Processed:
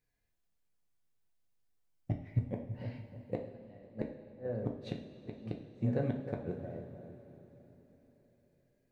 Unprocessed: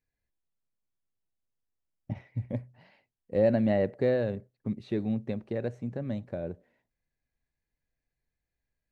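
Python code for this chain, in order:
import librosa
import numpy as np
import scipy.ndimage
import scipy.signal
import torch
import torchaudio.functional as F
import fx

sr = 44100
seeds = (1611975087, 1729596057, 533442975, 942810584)

y = fx.echo_wet_lowpass(x, sr, ms=307, feedback_pct=32, hz=1200.0, wet_db=-12.0)
y = fx.gate_flip(y, sr, shuts_db=-23.0, range_db=-36)
y = fx.rev_double_slope(y, sr, seeds[0], early_s=0.48, late_s=4.5, knee_db=-16, drr_db=1.0)
y = y * librosa.db_to_amplitude(1.5)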